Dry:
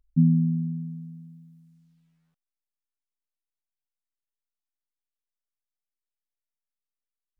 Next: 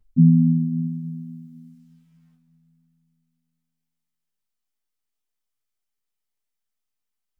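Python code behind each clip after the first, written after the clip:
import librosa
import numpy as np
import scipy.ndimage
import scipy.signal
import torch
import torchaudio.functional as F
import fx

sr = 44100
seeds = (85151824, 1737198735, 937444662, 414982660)

y = fx.rev_double_slope(x, sr, seeds[0], early_s=0.21, late_s=2.9, knee_db=-18, drr_db=-4.5)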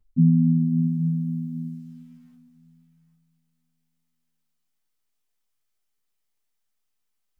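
y = fx.rider(x, sr, range_db=4, speed_s=0.5)
y = y + 10.0 ** (-13.5 / 20.0) * np.pad(y, (int(807 * sr / 1000.0), 0))[:len(y)]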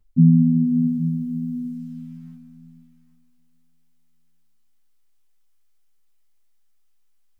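y = fx.rev_freeverb(x, sr, rt60_s=1.9, hf_ratio=0.4, predelay_ms=90, drr_db=11.0)
y = F.gain(torch.from_numpy(y), 4.0).numpy()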